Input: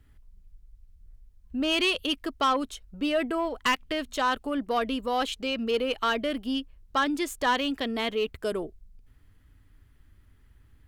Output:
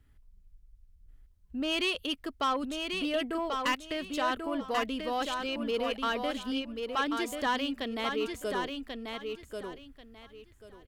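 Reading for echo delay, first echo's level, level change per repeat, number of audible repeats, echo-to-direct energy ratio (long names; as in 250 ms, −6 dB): 1,088 ms, −5.0 dB, −13.0 dB, 3, −5.0 dB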